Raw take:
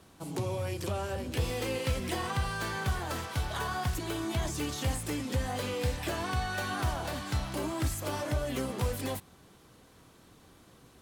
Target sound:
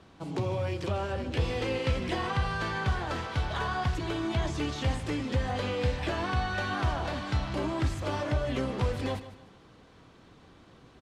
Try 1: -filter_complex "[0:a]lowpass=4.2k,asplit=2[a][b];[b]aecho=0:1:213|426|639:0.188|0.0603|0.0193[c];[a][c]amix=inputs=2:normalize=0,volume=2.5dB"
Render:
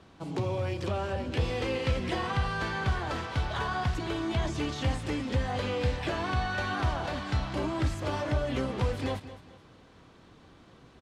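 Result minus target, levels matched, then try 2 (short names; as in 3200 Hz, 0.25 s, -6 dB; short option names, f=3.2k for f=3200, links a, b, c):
echo 61 ms late
-filter_complex "[0:a]lowpass=4.2k,asplit=2[a][b];[b]aecho=0:1:152|304|456:0.188|0.0603|0.0193[c];[a][c]amix=inputs=2:normalize=0,volume=2.5dB"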